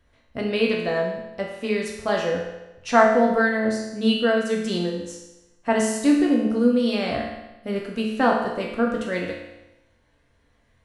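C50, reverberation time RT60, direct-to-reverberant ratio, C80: 3.0 dB, 1.0 s, -2.0 dB, 5.5 dB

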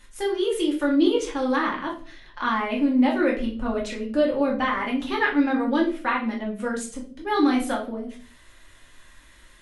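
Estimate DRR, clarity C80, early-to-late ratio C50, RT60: -3.0 dB, 13.5 dB, 8.5 dB, 0.45 s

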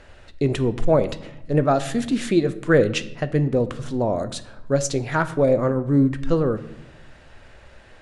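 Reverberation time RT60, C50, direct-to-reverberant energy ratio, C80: 0.80 s, 15.5 dB, 11.0 dB, 17.5 dB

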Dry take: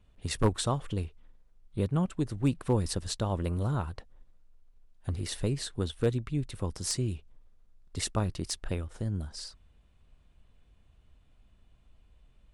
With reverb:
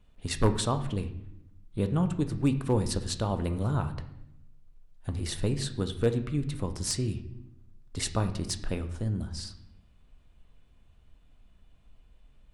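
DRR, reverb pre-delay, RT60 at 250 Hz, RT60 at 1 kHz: 7.5 dB, 3 ms, 1.2 s, 0.70 s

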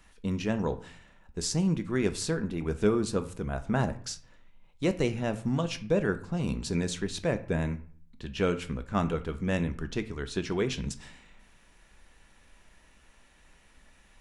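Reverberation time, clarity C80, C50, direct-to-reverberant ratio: 0.50 s, 19.0 dB, 14.5 dB, 9.0 dB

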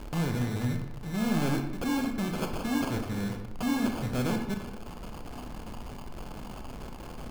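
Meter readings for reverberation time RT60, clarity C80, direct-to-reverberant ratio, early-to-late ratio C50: 0.95 s, 9.0 dB, 4.0 dB, 6.5 dB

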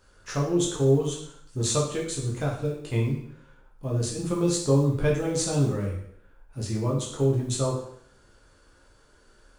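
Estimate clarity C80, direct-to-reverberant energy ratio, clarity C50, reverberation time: 8.0 dB, -3.0 dB, 4.5 dB, 0.65 s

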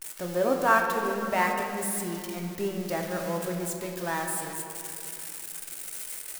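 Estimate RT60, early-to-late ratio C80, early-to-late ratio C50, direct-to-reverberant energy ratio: 2.7 s, 4.5 dB, 4.0 dB, 1.0 dB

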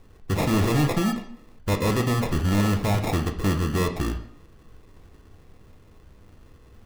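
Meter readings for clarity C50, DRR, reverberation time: 10.0 dB, 4.0 dB, 0.65 s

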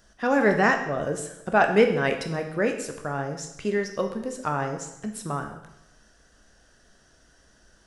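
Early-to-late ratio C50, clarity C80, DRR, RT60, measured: 8.0 dB, 10.5 dB, 4.5 dB, 0.85 s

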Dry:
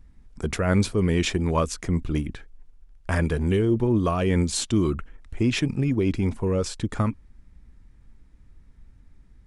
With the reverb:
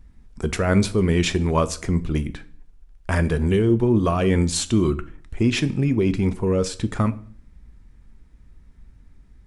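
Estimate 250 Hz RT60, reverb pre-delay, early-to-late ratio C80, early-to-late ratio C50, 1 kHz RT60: 0.65 s, 3 ms, 21.5 dB, 18.0 dB, 0.45 s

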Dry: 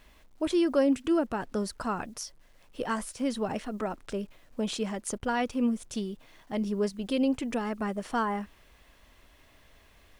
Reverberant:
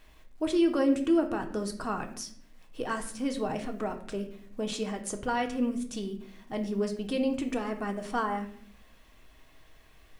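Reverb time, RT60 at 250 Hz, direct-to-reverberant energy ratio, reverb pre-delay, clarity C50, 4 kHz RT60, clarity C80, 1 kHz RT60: 0.60 s, 1.0 s, 4.0 dB, 3 ms, 10.5 dB, 0.45 s, 14.0 dB, 0.50 s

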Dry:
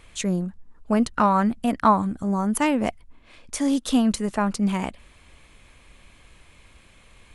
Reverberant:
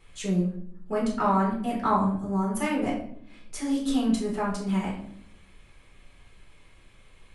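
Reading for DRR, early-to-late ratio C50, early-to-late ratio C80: -5.0 dB, 5.0 dB, 9.5 dB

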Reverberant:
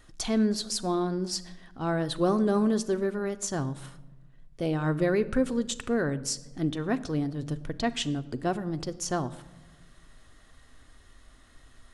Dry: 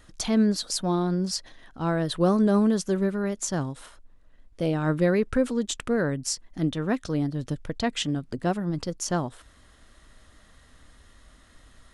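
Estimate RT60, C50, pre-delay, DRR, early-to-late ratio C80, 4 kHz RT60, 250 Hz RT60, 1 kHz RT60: 1.1 s, 17.0 dB, 3 ms, 10.0 dB, 18.5 dB, 0.65 s, 1.5 s, 0.95 s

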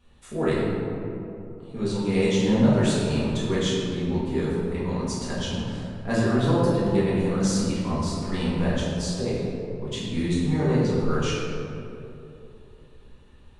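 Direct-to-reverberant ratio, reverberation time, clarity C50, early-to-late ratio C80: -10.0 dB, 2.9 s, -2.0 dB, 0.0 dB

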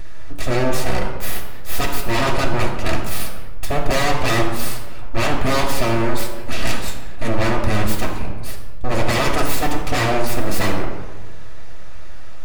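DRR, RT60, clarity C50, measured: -1.0 dB, 1.4 s, 5.5 dB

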